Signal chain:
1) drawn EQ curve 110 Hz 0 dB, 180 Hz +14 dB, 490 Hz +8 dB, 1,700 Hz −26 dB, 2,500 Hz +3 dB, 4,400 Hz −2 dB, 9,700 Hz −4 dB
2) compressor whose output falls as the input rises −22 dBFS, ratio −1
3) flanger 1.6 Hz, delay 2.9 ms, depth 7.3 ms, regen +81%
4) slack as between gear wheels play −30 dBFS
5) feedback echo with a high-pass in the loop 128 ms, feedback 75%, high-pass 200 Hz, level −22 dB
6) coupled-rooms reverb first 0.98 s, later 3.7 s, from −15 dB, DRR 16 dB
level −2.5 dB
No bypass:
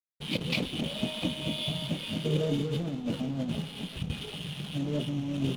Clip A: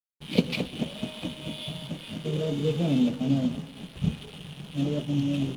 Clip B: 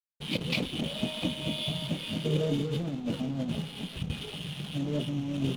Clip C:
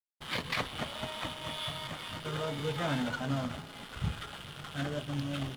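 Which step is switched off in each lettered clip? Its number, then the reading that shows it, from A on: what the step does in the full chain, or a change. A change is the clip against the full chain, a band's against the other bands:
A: 2, change in crest factor +4.5 dB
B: 5, echo-to-direct ratio −14.0 dB to −16.0 dB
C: 1, 1 kHz band +11.0 dB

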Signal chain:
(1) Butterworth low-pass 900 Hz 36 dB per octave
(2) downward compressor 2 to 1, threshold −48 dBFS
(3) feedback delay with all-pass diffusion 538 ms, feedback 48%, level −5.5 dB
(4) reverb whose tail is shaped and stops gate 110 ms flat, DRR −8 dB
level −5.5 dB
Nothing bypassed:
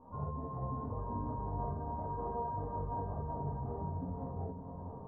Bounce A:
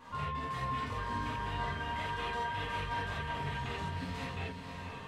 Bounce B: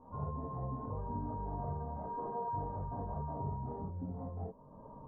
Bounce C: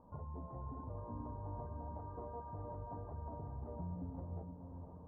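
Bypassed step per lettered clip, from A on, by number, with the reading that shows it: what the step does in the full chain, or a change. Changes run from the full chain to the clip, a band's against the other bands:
1, 1 kHz band +4.5 dB
3, echo-to-direct ratio 9.5 dB to 8.0 dB
4, echo-to-direct ratio 9.5 dB to −4.5 dB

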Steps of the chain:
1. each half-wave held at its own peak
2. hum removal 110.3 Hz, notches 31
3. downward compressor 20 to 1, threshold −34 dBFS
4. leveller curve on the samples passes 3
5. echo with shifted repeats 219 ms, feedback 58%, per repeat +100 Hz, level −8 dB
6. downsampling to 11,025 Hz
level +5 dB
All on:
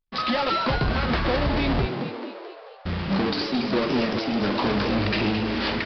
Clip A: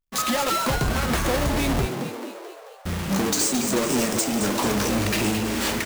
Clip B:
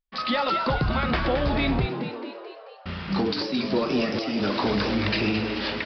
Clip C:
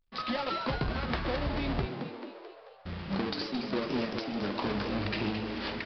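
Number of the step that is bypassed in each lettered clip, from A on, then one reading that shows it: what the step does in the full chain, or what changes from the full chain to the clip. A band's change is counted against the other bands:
6, change in momentary loudness spread +2 LU
1, distortion level −5 dB
4, change in crest factor +5.5 dB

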